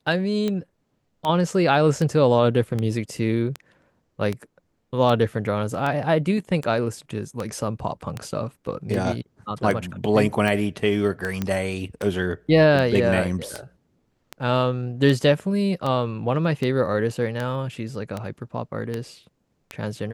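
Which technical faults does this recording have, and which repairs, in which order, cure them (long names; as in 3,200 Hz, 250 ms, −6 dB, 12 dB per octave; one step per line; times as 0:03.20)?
scratch tick 78 rpm −14 dBFS
0:11.42: click −12 dBFS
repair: click removal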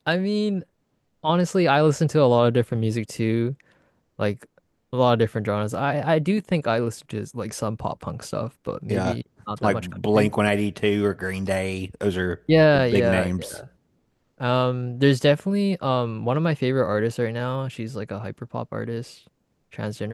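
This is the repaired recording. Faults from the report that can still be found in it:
none of them is left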